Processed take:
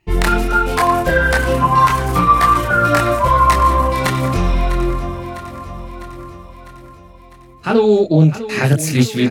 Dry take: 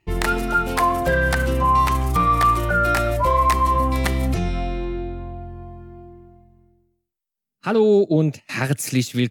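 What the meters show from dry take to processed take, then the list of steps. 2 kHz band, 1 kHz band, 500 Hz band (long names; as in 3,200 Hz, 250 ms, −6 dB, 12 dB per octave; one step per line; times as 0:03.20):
+6.0 dB, +5.5 dB, +4.5 dB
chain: multi-voice chorus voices 4, 0.41 Hz, delay 25 ms, depth 4.5 ms
repeating echo 652 ms, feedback 60%, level −13.5 dB
highs frequency-modulated by the lows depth 0.13 ms
level +8.5 dB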